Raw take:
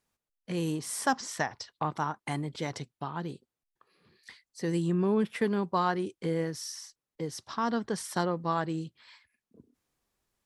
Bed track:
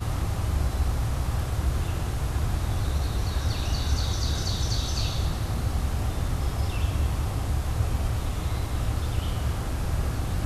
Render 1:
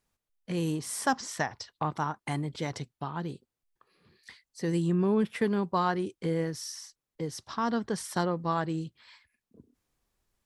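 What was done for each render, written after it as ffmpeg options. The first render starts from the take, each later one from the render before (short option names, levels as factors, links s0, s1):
-af "lowshelf=f=78:g=9.5"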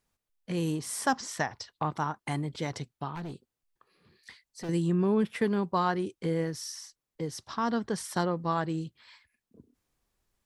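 -filter_complex "[0:a]asettb=1/sr,asplit=3[s0][s1][s2];[s0]atrim=end=3.154[s3];[s1]atrim=start=3.15:end=4.69,asetpts=PTS-STARTPTS,afade=t=in:d=0.004:c=qsin,afade=t=out:st=1.536:d=0.004:c=qsin,volume=53.1,asoftclip=hard,volume=0.0188[s4];[s2]atrim=start=4.686[s5];[s3][s4]acrossfade=d=0.004:c1=hsin:c2=qsin[s6];[s6][s5]acrossfade=d=0.004:c1=qsin:c2=hsin"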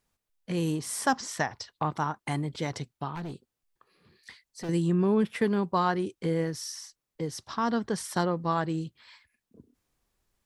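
-af "volume=1.19"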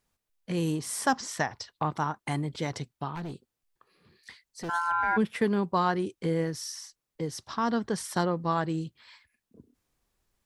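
-filter_complex "[0:a]asplit=3[s0][s1][s2];[s0]afade=t=out:st=4.68:d=0.02[s3];[s1]aeval=exprs='val(0)*sin(2*PI*1200*n/s)':c=same,afade=t=in:st=4.68:d=0.02,afade=t=out:st=5.16:d=0.02[s4];[s2]afade=t=in:st=5.16:d=0.02[s5];[s3][s4][s5]amix=inputs=3:normalize=0"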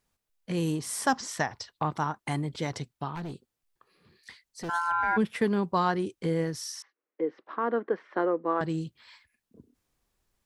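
-filter_complex "[0:a]asettb=1/sr,asplit=3[s0][s1][s2];[s0]atrim=end=6.824[s3];[s1]atrim=start=6.82:end=8.61,asetpts=PTS-STARTPTS,afade=t=in:d=0.004:c=qsin,afade=t=out:st=1.786:d=0.004:c=qsin,highpass=f=280:w=0.5412,highpass=f=280:w=1.3066,equalizer=f=320:t=q:w=4:g=5,equalizer=f=480:t=q:w=4:g=6,equalizer=f=850:t=q:w=4:g=-4,lowpass=f=2200:w=0.5412,lowpass=f=2200:w=1.3066[s4];[s2]atrim=start=8.606[s5];[s3][s4]acrossfade=d=0.004:c1=hsin:c2=qsin[s6];[s6][s5]acrossfade=d=0.004:c1=qsin:c2=hsin"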